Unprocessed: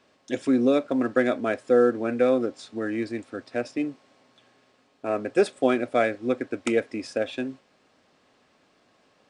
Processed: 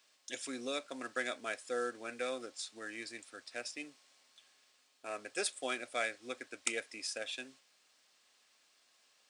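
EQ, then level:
first difference
parametric band 66 Hz +12 dB 1.3 octaves
+4.5 dB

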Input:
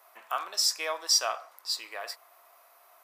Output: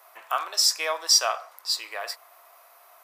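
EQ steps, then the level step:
high-pass filter 360 Hz 12 dB per octave
+5.0 dB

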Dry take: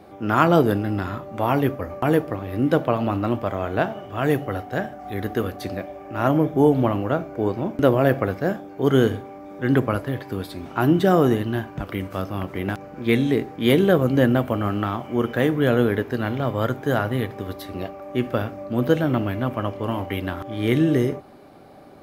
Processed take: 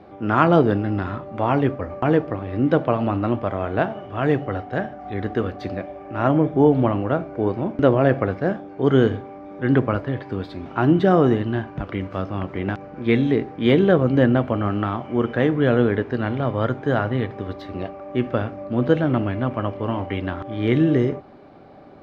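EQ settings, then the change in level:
high-frequency loss of the air 190 metres
+1.5 dB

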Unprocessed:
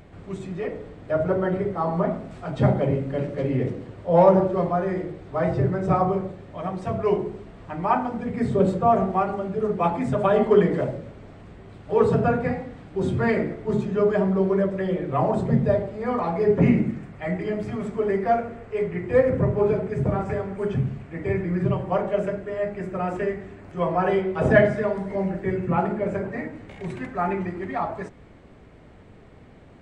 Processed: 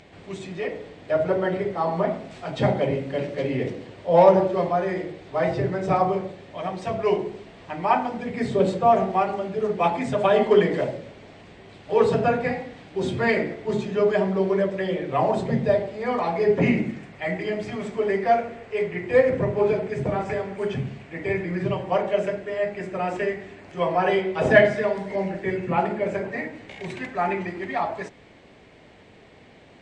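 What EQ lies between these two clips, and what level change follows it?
high-frequency loss of the air 110 metres
spectral tilt +3.5 dB per octave
parametric band 1,300 Hz −7.5 dB 0.69 octaves
+5.0 dB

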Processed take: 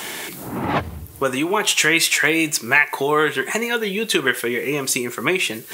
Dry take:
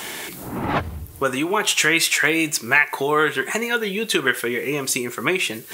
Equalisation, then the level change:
high-pass filter 80 Hz
dynamic equaliser 1,400 Hz, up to −4 dB, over −36 dBFS, Q 5.3
+1.5 dB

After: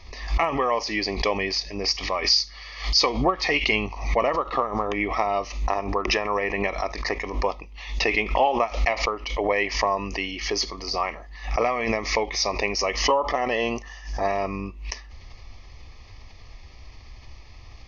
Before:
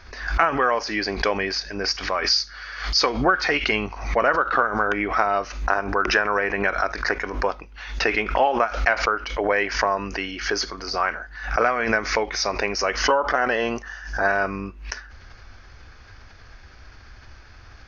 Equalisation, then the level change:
Butterworth band-reject 1,500 Hz, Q 2.1
spectral tilt −1.5 dB per octave
tilt shelving filter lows −4.5 dB, about 1,100 Hz
0.0 dB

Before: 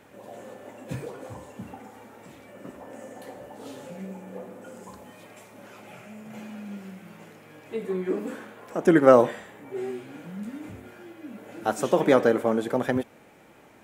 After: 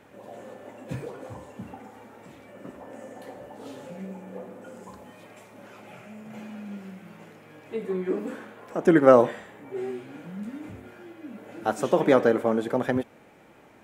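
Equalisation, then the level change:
high-shelf EQ 4,800 Hz −5.5 dB
0.0 dB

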